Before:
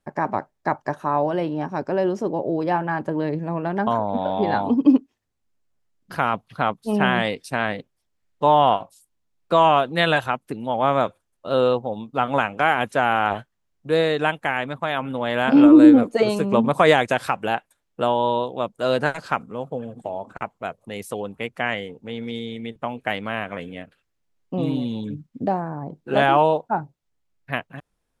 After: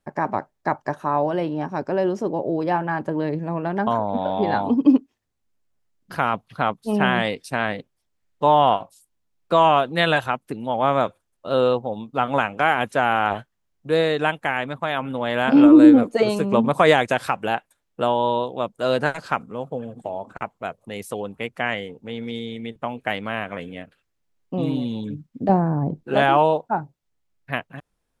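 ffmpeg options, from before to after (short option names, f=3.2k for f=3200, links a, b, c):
-filter_complex "[0:a]asettb=1/sr,asplit=3[a][b][c];[a]atrim=end=25.494[d];[b]atrim=start=25.49:end=26.03,asetpts=PTS-STARTPTS,afade=t=in:d=0.004:c=qsin,afade=t=out:st=0.536:d=0.004:c=qsin,lowshelf=f=500:g=11.5[e];[c]atrim=start=26.026[f];[d][e]acrossfade=d=0.004:c1=hsin:c2=qsin[g];[g][f]acrossfade=d=0.004:c1=qsin:c2=hsin"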